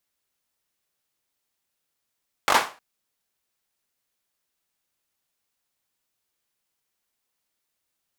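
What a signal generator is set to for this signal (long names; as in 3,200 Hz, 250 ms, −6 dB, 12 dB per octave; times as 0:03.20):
synth clap length 0.31 s, apart 21 ms, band 960 Hz, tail 0.32 s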